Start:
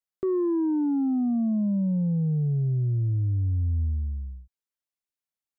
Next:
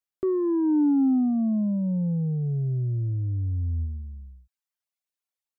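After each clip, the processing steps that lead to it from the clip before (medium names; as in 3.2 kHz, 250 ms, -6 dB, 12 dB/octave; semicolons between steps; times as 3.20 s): reverb removal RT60 1.5 s; dynamic bell 280 Hz, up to +5 dB, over -43 dBFS, Q 3.4; level rider gain up to 4 dB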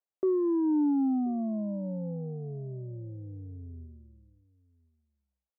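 band-pass filter 580 Hz, Q 1.5; delay 1032 ms -23.5 dB; trim +3 dB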